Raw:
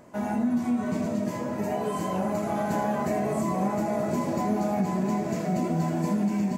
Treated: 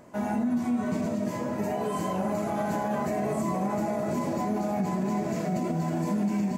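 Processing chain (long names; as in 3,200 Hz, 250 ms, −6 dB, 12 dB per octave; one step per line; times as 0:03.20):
brickwall limiter −20 dBFS, peak gain reduction 5 dB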